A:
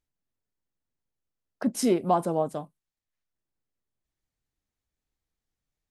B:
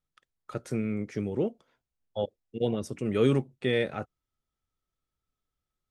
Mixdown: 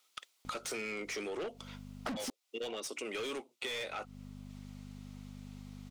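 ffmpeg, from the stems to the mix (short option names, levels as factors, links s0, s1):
-filter_complex "[0:a]aeval=exprs='val(0)+0.000794*(sin(2*PI*50*n/s)+sin(2*PI*2*50*n/s)/2+sin(2*PI*3*50*n/s)/3+sin(2*PI*4*50*n/s)/4+sin(2*PI*5*50*n/s)/5)':c=same,highshelf=f=9300:g=-6,adelay=450,volume=0.708,asplit=3[s0][s1][s2];[s0]atrim=end=2.3,asetpts=PTS-STARTPTS,afade=t=out:st=2.296:d=0.004:c=hsin[s3];[s1]atrim=start=2.3:end=3.7,asetpts=PTS-STARTPTS,volume=0[s4];[s2]atrim=start=3.7,asetpts=PTS-STARTPTS,afade=t=in:d=0.004:c=hsin[s5];[s3][s4][s5]concat=n=3:v=0:a=1[s6];[1:a]highpass=f=270:w=0.5412,highpass=f=270:w=1.3066,tiltshelf=f=1500:g=-7,volume=0.188,afade=t=out:st=1.91:d=0.76:silence=0.421697,asplit=2[s7][s8];[s8]apad=whole_len=280297[s9];[s6][s9]sidechaincompress=threshold=0.001:ratio=8:attack=16:release=152[s10];[s10][s7]amix=inputs=2:normalize=0,equalizer=f=1700:t=o:w=0.26:g=-11,asplit=2[s11][s12];[s12]highpass=f=720:p=1,volume=126,asoftclip=type=tanh:threshold=0.112[s13];[s11][s13]amix=inputs=2:normalize=0,lowpass=f=4400:p=1,volume=0.501,acompressor=threshold=0.0126:ratio=6"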